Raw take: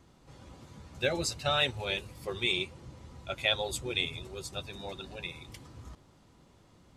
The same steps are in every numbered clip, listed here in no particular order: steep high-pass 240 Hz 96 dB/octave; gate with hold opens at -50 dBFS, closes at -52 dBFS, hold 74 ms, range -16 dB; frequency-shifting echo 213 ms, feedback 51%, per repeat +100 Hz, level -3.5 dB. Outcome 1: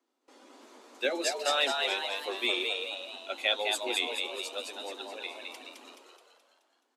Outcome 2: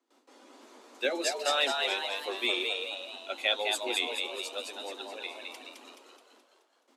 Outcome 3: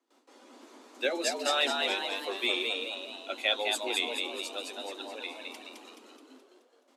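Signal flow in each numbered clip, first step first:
steep high-pass > gate with hold > frequency-shifting echo; gate with hold > steep high-pass > frequency-shifting echo; gate with hold > frequency-shifting echo > steep high-pass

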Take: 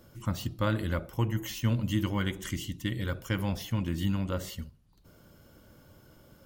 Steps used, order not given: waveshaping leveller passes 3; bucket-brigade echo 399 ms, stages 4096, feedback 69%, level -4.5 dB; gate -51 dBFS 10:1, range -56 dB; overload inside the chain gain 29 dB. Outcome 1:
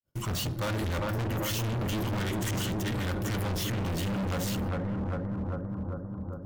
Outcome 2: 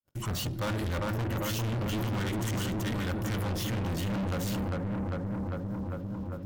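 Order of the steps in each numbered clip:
gate > waveshaping leveller > bucket-brigade echo > overload inside the chain; gate > bucket-brigade echo > overload inside the chain > waveshaping leveller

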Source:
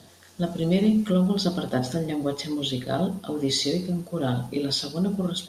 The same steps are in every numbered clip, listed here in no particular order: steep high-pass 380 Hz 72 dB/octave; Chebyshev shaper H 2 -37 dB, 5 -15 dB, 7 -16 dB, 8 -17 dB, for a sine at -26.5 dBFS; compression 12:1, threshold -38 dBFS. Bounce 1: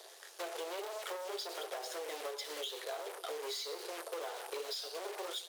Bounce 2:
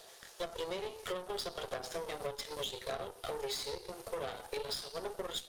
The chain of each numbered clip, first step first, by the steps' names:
Chebyshev shaper > steep high-pass > compression; steep high-pass > compression > Chebyshev shaper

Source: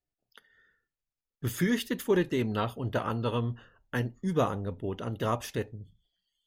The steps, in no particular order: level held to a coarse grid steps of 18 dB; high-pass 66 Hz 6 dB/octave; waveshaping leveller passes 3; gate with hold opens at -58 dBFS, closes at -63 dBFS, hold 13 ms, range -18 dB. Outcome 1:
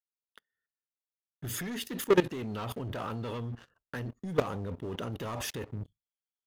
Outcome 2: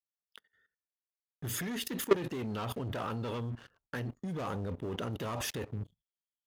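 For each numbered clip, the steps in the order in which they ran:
high-pass > waveshaping leveller > gate with hold > level held to a coarse grid; gate with hold > waveshaping leveller > high-pass > level held to a coarse grid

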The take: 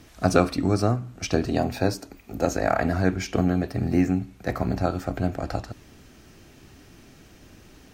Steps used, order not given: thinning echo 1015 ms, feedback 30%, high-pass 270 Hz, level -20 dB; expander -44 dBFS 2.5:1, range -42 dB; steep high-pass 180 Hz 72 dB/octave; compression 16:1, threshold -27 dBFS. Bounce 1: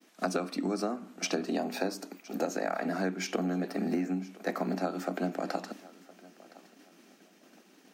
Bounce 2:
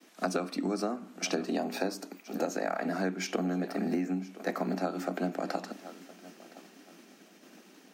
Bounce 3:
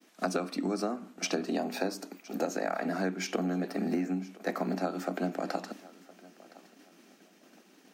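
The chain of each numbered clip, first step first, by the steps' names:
steep high-pass > expander > compression > thinning echo; thinning echo > expander > steep high-pass > compression; steep high-pass > compression > expander > thinning echo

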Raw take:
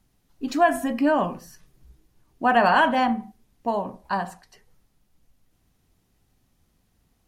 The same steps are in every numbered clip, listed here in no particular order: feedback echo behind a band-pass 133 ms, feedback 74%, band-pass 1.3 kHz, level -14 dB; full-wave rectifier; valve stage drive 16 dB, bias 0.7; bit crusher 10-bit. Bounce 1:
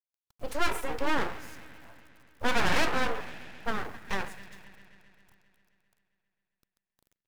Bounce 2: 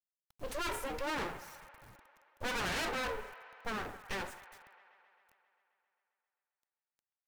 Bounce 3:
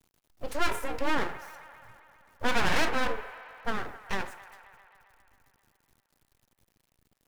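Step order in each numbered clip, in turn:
valve stage > bit crusher > feedback echo behind a band-pass > full-wave rectifier; full-wave rectifier > valve stage > bit crusher > feedback echo behind a band-pass; bit crusher > valve stage > full-wave rectifier > feedback echo behind a band-pass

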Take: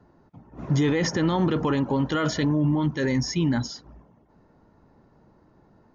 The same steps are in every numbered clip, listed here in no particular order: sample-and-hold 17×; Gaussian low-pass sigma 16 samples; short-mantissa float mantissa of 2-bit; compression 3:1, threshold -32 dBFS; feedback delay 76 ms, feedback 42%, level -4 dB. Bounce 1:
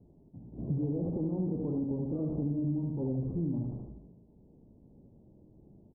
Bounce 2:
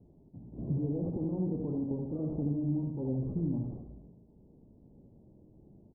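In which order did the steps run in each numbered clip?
sample-and-hold > feedback delay > short-mantissa float > Gaussian low-pass > compression; short-mantissa float > compression > feedback delay > sample-and-hold > Gaussian low-pass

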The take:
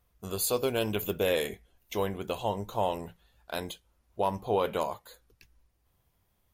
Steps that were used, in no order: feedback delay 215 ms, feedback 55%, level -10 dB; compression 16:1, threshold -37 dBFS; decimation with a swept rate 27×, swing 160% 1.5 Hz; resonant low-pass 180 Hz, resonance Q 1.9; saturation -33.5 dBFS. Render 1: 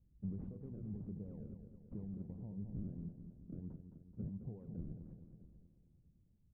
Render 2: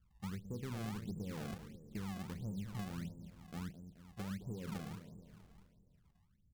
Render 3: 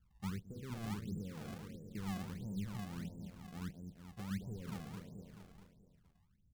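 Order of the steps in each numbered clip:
decimation with a swept rate > compression > feedback delay > saturation > resonant low-pass; resonant low-pass > compression > saturation > feedback delay > decimation with a swept rate; feedback delay > saturation > compression > resonant low-pass > decimation with a swept rate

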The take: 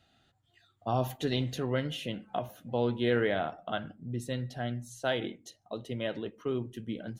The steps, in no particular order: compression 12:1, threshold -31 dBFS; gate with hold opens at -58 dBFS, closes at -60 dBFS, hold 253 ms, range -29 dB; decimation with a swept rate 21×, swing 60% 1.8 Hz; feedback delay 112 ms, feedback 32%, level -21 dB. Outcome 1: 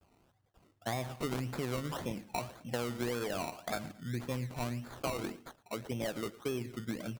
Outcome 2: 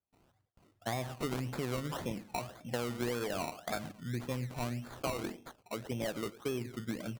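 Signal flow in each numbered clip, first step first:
gate with hold > decimation with a swept rate > feedback delay > compression; feedback delay > compression > decimation with a swept rate > gate with hold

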